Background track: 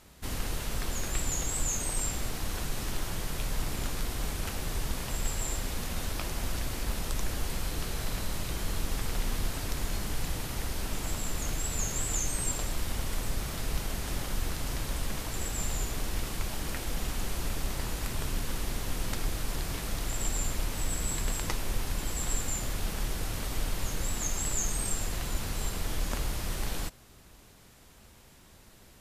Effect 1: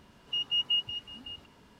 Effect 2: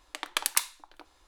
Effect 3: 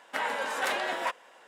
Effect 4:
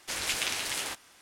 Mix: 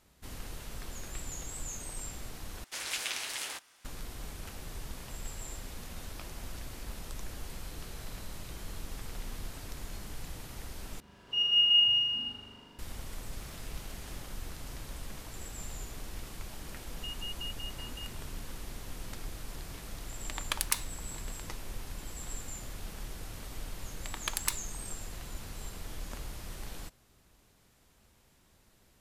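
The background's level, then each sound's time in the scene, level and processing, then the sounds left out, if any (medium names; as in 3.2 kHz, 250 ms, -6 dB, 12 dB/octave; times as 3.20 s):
background track -9.5 dB
2.64 s: replace with 4 -4.5 dB + bass shelf 410 Hz -7.5 dB
11.00 s: replace with 1 -2.5 dB + flutter echo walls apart 6.9 m, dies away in 1.2 s
13.25 s: add 4 -13 dB + compression, threshold -41 dBFS
16.71 s: add 1 -0.5 dB + compression 4:1, threshold -41 dBFS
20.15 s: add 2 -4.5 dB
23.91 s: add 2 -6.5 dB
not used: 3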